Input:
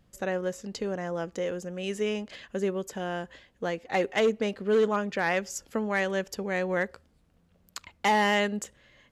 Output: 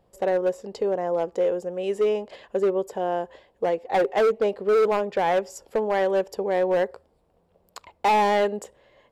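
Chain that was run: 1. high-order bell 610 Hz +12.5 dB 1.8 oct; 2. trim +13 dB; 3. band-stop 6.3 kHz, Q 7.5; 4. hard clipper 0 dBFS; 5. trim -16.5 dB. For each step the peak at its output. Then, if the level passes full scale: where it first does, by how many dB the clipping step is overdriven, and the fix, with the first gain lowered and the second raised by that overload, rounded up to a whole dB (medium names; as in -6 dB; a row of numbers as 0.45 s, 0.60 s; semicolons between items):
-3.5 dBFS, +9.5 dBFS, +9.5 dBFS, 0.0 dBFS, -16.5 dBFS; step 2, 9.5 dB; step 2 +3 dB, step 5 -6.5 dB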